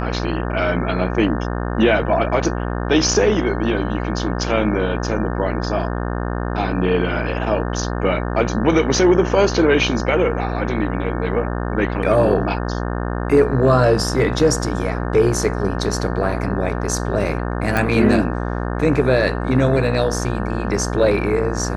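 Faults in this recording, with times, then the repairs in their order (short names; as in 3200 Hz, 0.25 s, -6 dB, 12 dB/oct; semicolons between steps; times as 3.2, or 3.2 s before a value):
buzz 60 Hz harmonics 30 -23 dBFS
17.77 pop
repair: de-click; de-hum 60 Hz, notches 30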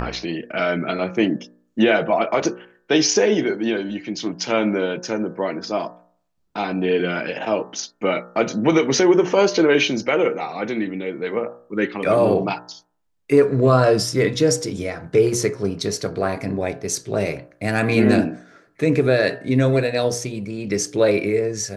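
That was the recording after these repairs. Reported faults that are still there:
none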